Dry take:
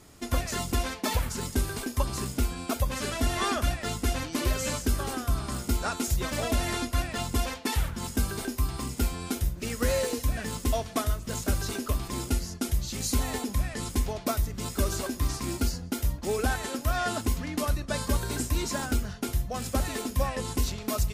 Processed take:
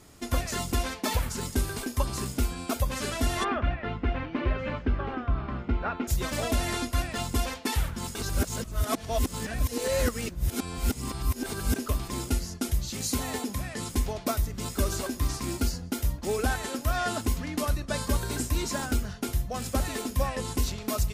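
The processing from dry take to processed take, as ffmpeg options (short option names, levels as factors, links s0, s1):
-filter_complex "[0:a]asplit=3[s0][s1][s2];[s0]afade=t=out:st=3.43:d=0.02[s3];[s1]lowpass=f=2600:w=0.5412,lowpass=f=2600:w=1.3066,afade=t=in:st=3.43:d=0.02,afade=t=out:st=6.07:d=0.02[s4];[s2]afade=t=in:st=6.07:d=0.02[s5];[s3][s4][s5]amix=inputs=3:normalize=0,asettb=1/sr,asplit=3[s6][s7][s8];[s6]atrim=end=12.904[s9];[s7]atrim=start=12.9:end=13.94,asetpts=PTS-STARTPTS,afade=t=in:d=0.004:c=qsin,afade=t=out:st=1.036:d=0.004:c=qsin,highpass=86[s10];[s8]atrim=start=13.936[s11];[s9][s10]acrossfade=d=0.004:c1=hsin:c2=qsin[s12];[s12][s11]acrossfade=d=0.004:c1=qsin:c2=hsin,asplit=3[s13][s14][s15];[s13]atrim=end=8.152[s16];[s14]atrim=start=8.148:end=11.762,asetpts=PTS-STARTPTS,areverse[s17];[s15]atrim=start=11.758[s18];[s16][s17]acrossfade=d=0.004:c1=hsin:c2=hsin[s19];[s19][s18]acrossfade=d=0.004:c1=hsin:c2=hsin"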